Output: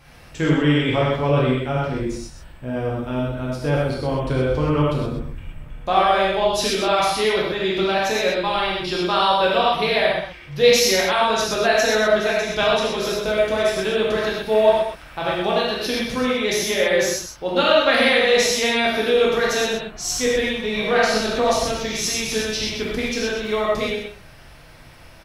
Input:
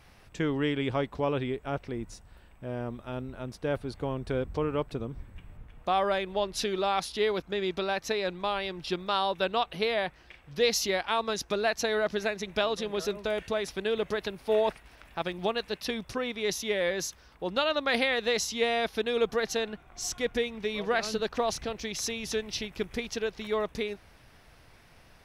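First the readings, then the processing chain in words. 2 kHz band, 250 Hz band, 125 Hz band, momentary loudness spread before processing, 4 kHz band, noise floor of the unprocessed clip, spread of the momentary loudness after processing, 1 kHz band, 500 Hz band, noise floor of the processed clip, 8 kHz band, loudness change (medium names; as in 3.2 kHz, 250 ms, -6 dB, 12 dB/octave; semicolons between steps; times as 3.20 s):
+11.0 dB, +10.5 dB, +13.5 dB, 9 LU, +11.0 dB, -57 dBFS, 9 LU, +10.5 dB, +10.5 dB, -44 dBFS, +10.5 dB, +10.5 dB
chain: on a send: delay 125 ms -8 dB; on the sum: gated-style reverb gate 150 ms flat, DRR -5.5 dB; trim +4 dB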